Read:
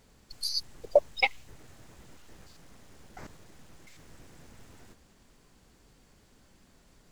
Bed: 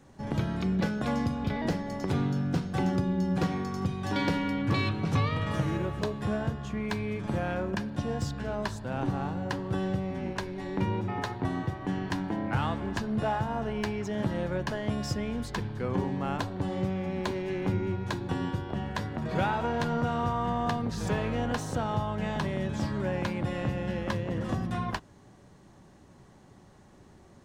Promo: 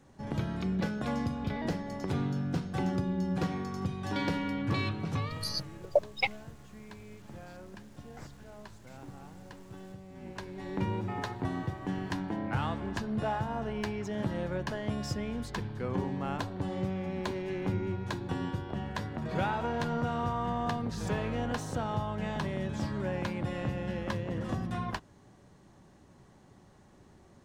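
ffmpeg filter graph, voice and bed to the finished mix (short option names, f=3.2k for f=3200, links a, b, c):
-filter_complex "[0:a]adelay=5000,volume=-4dB[a];[1:a]volume=10.5dB,afade=t=out:st=4.86:d=0.84:silence=0.211349,afade=t=in:st=10.08:d=0.67:silence=0.199526[b];[a][b]amix=inputs=2:normalize=0"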